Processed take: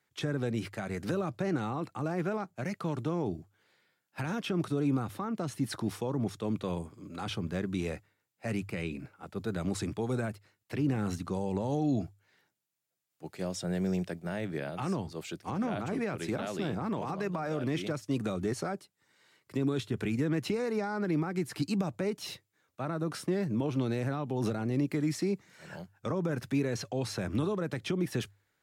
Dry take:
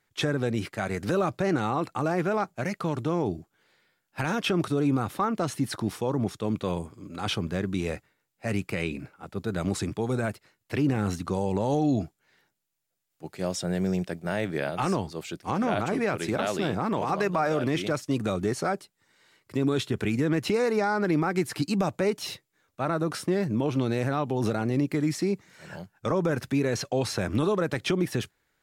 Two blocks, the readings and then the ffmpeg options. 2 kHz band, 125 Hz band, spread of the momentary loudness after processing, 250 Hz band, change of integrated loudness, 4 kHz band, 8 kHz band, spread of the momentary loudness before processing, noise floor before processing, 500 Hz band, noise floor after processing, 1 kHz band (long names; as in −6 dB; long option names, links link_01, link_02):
−7.5 dB, −4.0 dB, 8 LU, −4.5 dB, −5.5 dB, −7.0 dB, −6.0 dB, 9 LU, −78 dBFS, −6.5 dB, −79 dBFS, −8.5 dB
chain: -filter_complex "[0:a]highpass=57,bandreject=frequency=50:width_type=h:width=6,bandreject=frequency=100:width_type=h:width=6,acrossover=split=300[link_01][link_02];[link_02]alimiter=limit=-24dB:level=0:latency=1:release=315[link_03];[link_01][link_03]amix=inputs=2:normalize=0,volume=-3.5dB"